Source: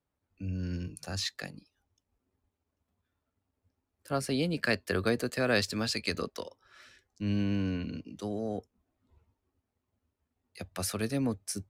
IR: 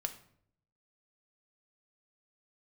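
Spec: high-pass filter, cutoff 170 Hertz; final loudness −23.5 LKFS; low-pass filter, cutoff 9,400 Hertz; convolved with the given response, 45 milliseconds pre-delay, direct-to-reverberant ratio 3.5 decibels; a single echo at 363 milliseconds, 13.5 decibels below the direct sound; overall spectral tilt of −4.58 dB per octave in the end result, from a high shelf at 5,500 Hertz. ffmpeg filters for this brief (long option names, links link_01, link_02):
-filter_complex "[0:a]highpass=170,lowpass=9400,highshelf=frequency=5500:gain=-4,aecho=1:1:363:0.211,asplit=2[link_01][link_02];[1:a]atrim=start_sample=2205,adelay=45[link_03];[link_02][link_03]afir=irnorm=-1:irlink=0,volume=-3.5dB[link_04];[link_01][link_04]amix=inputs=2:normalize=0,volume=9dB"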